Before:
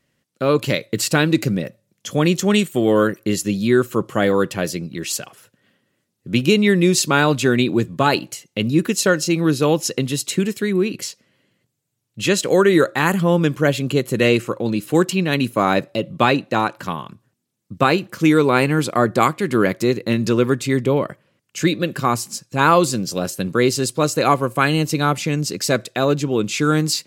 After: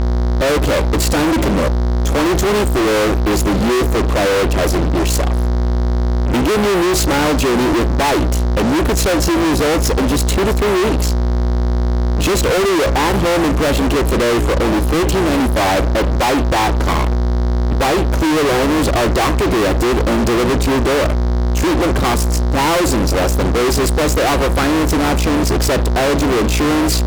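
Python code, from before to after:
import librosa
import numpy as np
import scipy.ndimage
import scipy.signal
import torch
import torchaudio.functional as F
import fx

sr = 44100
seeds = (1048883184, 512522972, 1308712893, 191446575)

y = fx.band_shelf(x, sr, hz=510.0, db=14.5, octaves=2.4)
y = fx.dmg_buzz(y, sr, base_hz=60.0, harmonics=11, level_db=-18.0, tilt_db=-7, odd_only=False)
y = fx.fuzz(y, sr, gain_db=26.0, gate_db=-32.0)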